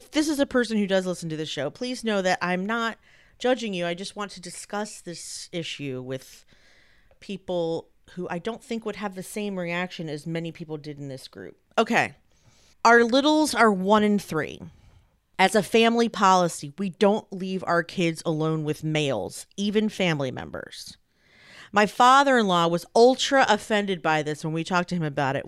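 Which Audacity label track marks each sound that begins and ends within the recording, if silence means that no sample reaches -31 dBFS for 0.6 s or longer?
7.290000	12.080000	sound
12.850000	14.640000	sound
15.390000	20.890000	sound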